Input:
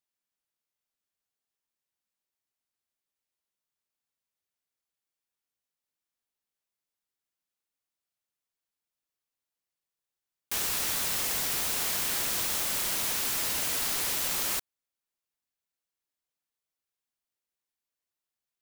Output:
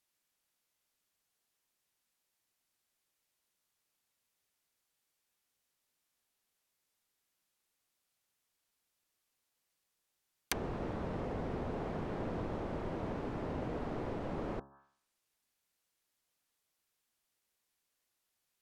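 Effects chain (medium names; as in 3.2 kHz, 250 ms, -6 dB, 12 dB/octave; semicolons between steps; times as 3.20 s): de-hum 68.76 Hz, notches 25; low-pass that closes with the level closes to 520 Hz, closed at -32 dBFS; trim +7.5 dB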